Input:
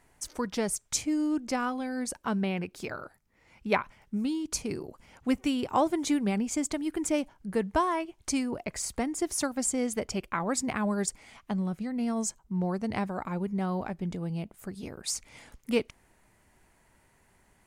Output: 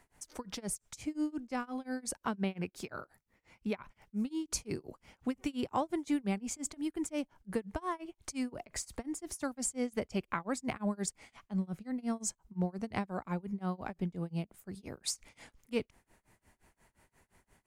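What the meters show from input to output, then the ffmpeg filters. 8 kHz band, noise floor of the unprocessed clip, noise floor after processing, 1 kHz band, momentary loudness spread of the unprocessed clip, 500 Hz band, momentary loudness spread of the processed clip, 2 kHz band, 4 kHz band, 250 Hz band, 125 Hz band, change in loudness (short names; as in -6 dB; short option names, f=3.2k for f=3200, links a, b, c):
-6.5 dB, -66 dBFS, -82 dBFS, -8.0 dB, 9 LU, -7.5 dB, 8 LU, -7.5 dB, -6.5 dB, -6.5 dB, -4.5 dB, -6.5 dB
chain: -filter_complex "[0:a]acrossover=split=190[a][b];[b]acompressor=threshold=-32dB:ratio=2[c];[a][c]amix=inputs=2:normalize=0,tremolo=f=5.7:d=0.97"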